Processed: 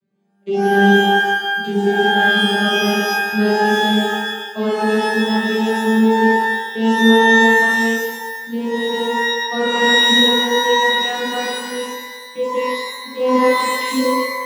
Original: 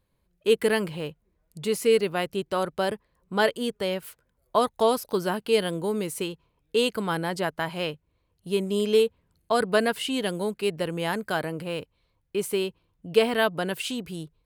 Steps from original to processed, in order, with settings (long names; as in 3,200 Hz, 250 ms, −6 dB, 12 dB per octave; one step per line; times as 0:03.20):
vocoder with a gliding carrier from G3, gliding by +5 semitones
parametric band 950 Hz −11.5 dB 0.65 octaves
brickwall limiter −20.5 dBFS, peak gain reduction 9 dB
reverb with rising layers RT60 1.1 s, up +12 semitones, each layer −2 dB, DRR −8 dB
level +2 dB